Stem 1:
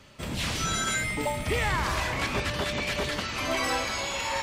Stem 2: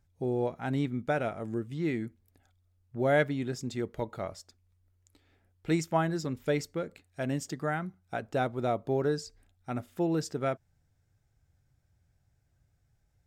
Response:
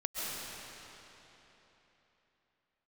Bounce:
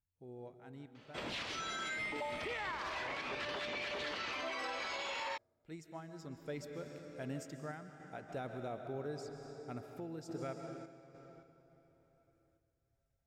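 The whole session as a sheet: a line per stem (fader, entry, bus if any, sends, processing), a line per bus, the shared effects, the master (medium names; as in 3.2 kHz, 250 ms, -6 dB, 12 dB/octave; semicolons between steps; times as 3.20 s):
-1.0 dB, 0.95 s, no send, three-band isolator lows -18 dB, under 280 Hz, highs -20 dB, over 5.3 kHz
6.03 s -22.5 dB -> 6.31 s -12.5 dB, 0.00 s, send -7 dB, none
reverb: on, RT60 3.6 s, pre-delay 95 ms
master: random-step tremolo; peak limiter -32 dBFS, peak gain reduction 13.5 dB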